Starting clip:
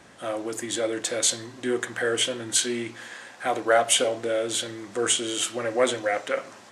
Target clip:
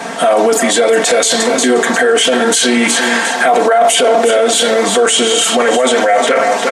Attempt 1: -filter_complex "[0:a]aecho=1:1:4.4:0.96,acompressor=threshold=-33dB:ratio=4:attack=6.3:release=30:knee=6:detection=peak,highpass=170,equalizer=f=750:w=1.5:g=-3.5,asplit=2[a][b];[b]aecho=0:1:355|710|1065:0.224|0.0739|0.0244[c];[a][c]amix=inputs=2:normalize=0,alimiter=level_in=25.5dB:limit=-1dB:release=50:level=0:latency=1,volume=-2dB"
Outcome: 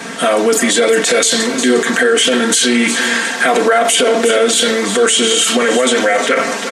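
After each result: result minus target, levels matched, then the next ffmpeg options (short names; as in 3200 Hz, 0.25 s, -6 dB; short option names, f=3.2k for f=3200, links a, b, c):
compressor: peak gain reduction +7.5 dB; 1000 Hz band -3.5 dB
-filter_complex "[0:a]aecho=1:1:4.4:0.96,acompressor=threshold=-23dB:ratio=4:attack=6.3:release=30:knee=6:detection=peak,highpass=170,equalizer=f=750:w=1.5:g=-3.5,asplit=2[a][b];[b]aecho=0:1:355|710|1065:0.224|0.0739|0.0244[c];[a][c]amix=inputs=2:normalize=0,alimiter=level_in=25.5dB:limit=-1dB:release=50:level=0:latency=1,volume=-2dB"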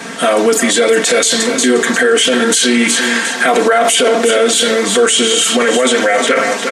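1000 Hz band -3.5 dB
-filter_complex "[0:a]aecho=1:1:4.4:0.96,acompressor=threshold=-23dB:ratio=4:attack=6.3:release=30:knee=6:detection=peak,highpass=170,equalizer=f=750:w=1.5:g=7.5,asplit=2[a][b];[b]aecho=0:1:355|710|1065:0.224|0.0739|0.0244[c];[a][c]amix=inputs=2:normalize=0,alimiter=level_in=25.5dB:limit=-1dB:release=50:level=0:latency=1,volume=-2dB"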